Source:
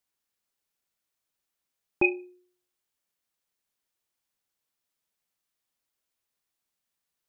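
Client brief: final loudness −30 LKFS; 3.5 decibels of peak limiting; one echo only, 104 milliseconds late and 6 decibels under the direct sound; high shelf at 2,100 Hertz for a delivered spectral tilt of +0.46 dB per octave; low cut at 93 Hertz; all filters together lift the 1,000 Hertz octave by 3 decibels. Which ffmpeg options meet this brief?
ffmpeg -i in.wav -af "highpass=93,equalizer=frequency=1000:width_type=o:gain=4.5,highshelf=frequency=2100:gain=-3,alimiter=limit=-15dB:level=0:latency=1,aecho=1:1:104:0.501,volume=0.5dB" out.wav

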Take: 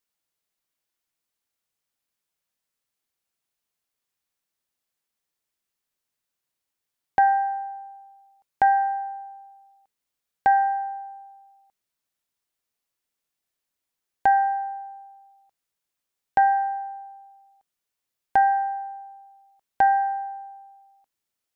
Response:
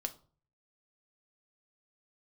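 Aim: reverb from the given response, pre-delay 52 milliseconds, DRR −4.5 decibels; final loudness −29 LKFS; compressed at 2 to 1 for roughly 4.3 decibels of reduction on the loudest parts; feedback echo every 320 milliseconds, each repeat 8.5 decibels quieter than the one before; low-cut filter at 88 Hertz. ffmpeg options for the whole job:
-filter_complex "[0:a]highpass=88,acompressor=threshold=-22dB:ratio=2,aecho=1:1:320|640|960|1280:0.376|0.143|0.0543|0.0206,asplit=2[link_01][link_02];[1:a]atrim=start_sample=2205,adelay=52[link_03];[link_02][link_03]afir=irnorm=-1:irlink=0,volume=5dB[link_04];[link_01][link_04]amix=inputs=2:normalize=0,volume=-11dB"

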